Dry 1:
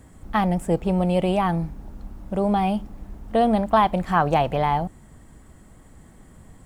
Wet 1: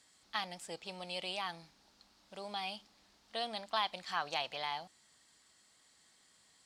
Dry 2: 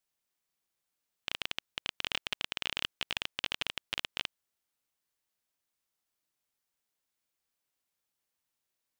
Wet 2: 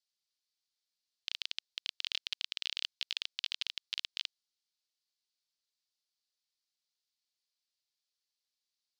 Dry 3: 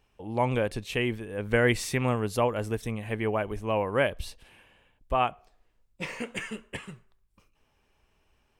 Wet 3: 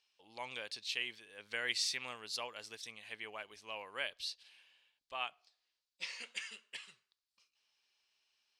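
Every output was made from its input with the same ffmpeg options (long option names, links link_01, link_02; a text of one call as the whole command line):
ffmpeg -i in.wav -af "bandpass=frequency=4500:width_type=q:width=3:csg=0,volume=6dB" out.wav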